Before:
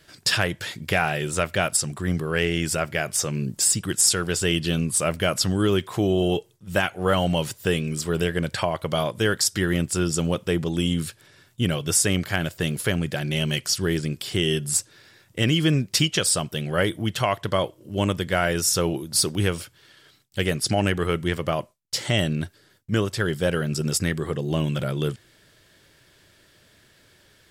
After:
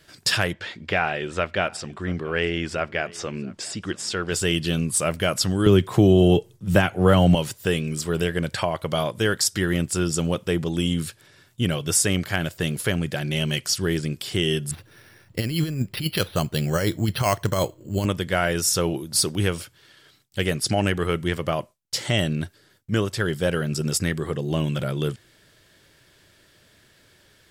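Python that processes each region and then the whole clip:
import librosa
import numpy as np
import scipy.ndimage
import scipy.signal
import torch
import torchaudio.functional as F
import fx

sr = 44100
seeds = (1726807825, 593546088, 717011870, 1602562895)

y = fx.chain(x, sr, fx.lowpass(hz=3600.0, slope=12),
    fx.peak_eq(hz=130.0, db=-14.0, octaves=0.48),
    fx.echo_single(ms=682, db=-23.0), at=(0.53, 4.32))
y = fx.chain(y, sr, fx.low_shelf(hz=420.0, db=9.0),
    fx.band_squash(depth_pct=40), at=(5.66, 7.35))
y = fx.chain(y, sr, fx.low_shelf(hz=110.0, db=8.5),
    fx.over_compress(threshold_db=-21.0, ratio=-0.5),
    fx.resample_bad(factor=6, down='filtered', up='hold'), at=(14.71, 18.06))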